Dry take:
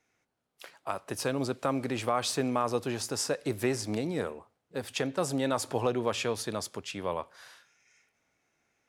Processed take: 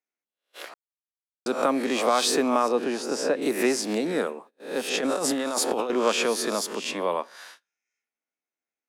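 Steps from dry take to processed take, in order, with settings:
peak hold with a rise ahead of every peak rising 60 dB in 0.50 s
0:02.68–0:03.42: low-pass filter 2,100 Hz 6 dB per octave
noise gate −51 dBFS, range −27 dB
Butterworth high-pass 200 Hz 36 dB per octave
0:00.74–0:01.46: silence
0:04.96–0:05.90: compressor whose output falls as the input rises −32 dBFS, ratio −1
level +5.5 dB

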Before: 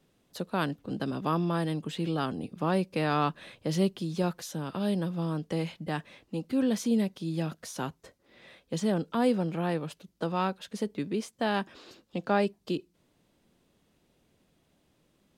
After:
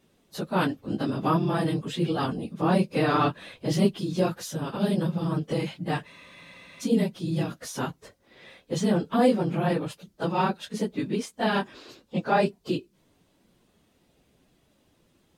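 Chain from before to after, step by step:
random phases in long frames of 50 ms
frozen spectrum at 0:06.09, 0.72 s
level +4 dB

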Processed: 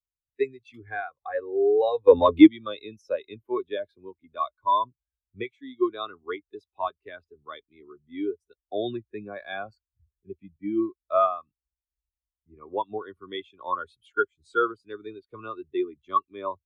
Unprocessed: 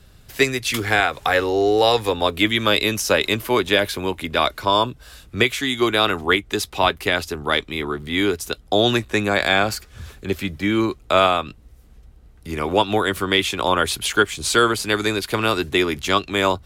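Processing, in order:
dynamic equaliser 1,100 Hz, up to +5 dB, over −37 dBFS, Q 4.9
0:02.07–0:02.47: leveller curve on the samples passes 3
every bin expanded away from the loudest bin 2.5 to 1

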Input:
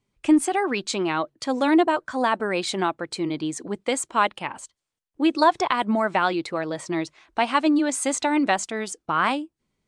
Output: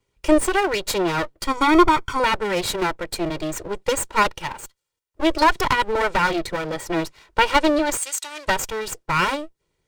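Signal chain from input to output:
lower of the sound and its delayed copy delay 2.1 ms
0:01.47–0:02.20: comb filter 0.9 ms, depth 73%
0:07.97–0:08.48: resonant band-pass 7,600 Hz, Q 0.6
level +5 dB

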